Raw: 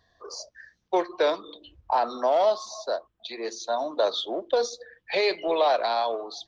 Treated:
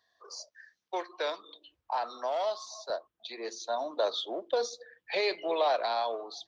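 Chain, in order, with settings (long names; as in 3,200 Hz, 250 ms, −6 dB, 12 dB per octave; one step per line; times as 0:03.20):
high-pass filter 1,000 Hz 6 dB per octave, from 0:02.90 270 Hz
level −4.5 dB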